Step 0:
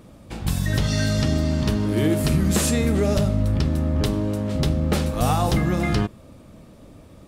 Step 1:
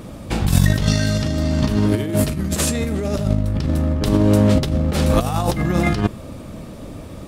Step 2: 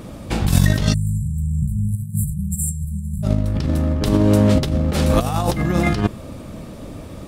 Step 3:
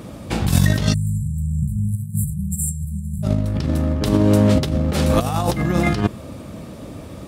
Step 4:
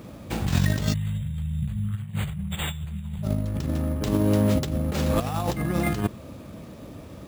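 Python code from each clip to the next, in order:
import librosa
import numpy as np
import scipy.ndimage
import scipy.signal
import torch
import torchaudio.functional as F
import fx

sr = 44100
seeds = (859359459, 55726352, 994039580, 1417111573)

y1 = fx.over_compress(x, sr, threshold_db=-24.0, ratio=-0.5)
y1 = y1 * librosa.db_to_amplitude(7.5)
y2 = fx.spec_erase(y1, sr, start_s=0.94, length_s=2.29, low_hz=210.0, high_hz=7200.0)
y3 = scipy.signal.sosfilt(scipy.signal.butter(2, 59.0, 'highpass', fs=sr, output='sos'), y2)
y4 = np.repeat(y3[::4], 4)[:len(y3)]
y4 = y4 * librosa.db_to_amplitude(-6.5)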